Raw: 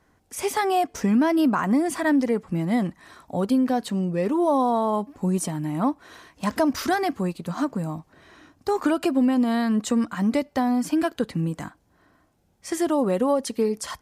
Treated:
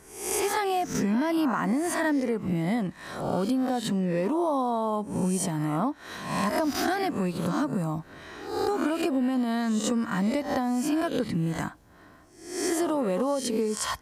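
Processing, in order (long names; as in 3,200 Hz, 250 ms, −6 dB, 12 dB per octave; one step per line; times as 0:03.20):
peak hold with a rise ahead of every peak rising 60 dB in 0.59 s
downward compressor 4 to 1, threshold −31 dBFS, peak gain reduction 13.5 dB
level +5.5 dB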